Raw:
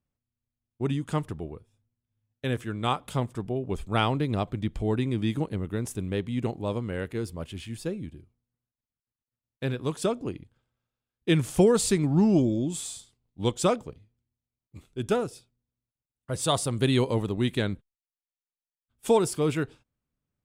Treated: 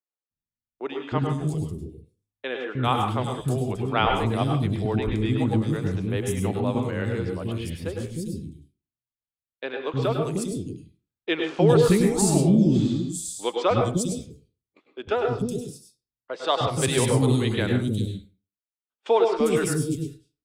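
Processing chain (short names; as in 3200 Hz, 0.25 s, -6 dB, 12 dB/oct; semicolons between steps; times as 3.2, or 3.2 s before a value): gate -43 dBFS, range -14 dB; three bands offset in time mids, lows, highs 0.31/0.4 s, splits 350/4300 Hz; reverb RT60 0.35 s, pre-delay 95 ms, DRR 3 dB; gain +3.5 dB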